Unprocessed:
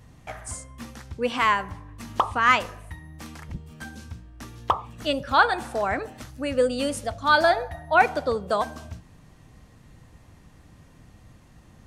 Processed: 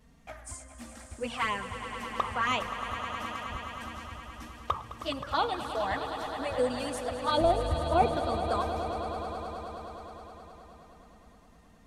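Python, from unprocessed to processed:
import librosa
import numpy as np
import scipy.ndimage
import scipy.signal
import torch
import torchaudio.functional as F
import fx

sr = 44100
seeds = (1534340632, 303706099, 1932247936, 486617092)

y = fx.tilt_eq(x, sr, slope=-3.5, at=(7.37, 8.17))
y = fx.env_flanger(y, sr, rest_ms=4.7, full_db=-15.5)
y = fx.echo_swell(y, sr, ms=105, loudest=5, wet_db=-12.5)
y = y * librosa.db_to_amplitude(-4.5)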